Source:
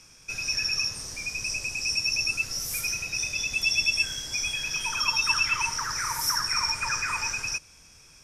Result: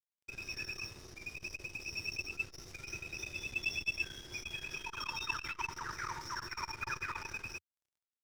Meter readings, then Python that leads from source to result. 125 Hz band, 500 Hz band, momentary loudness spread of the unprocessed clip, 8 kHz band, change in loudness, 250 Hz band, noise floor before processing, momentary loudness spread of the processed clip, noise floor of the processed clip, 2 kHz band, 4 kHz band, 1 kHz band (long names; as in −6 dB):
−7.0 dB, −4.0 dB, 7 LU, −20.5 dB, −14.0 dB, −5.0 dB, −53 dBFS, 9 LU, below −85 dBFS, −11.5 dB, −17.5 dB, −10.0 dB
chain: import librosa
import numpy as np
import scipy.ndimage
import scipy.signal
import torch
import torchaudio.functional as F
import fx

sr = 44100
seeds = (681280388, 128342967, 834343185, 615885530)

y = fx.air_absorb(x, sr, metres=190.0)
y = fx.small_body(y, sr, hz=(360.0, 3700.0), ring_ms=50, db=13)
y = np.sign(y) * np.maximum(np.abs(y) - 10.0 ** (-48.0 / 20.0), 0.0)
y = fx.peak_eq(y, sr, hz=87.0, db=4.0, octaves=0.79)
y = fx.transformer_sat(y, sr, knee_hz=710.0)
y = F.gain(torch.from_numpy(y), -5.0).numpy()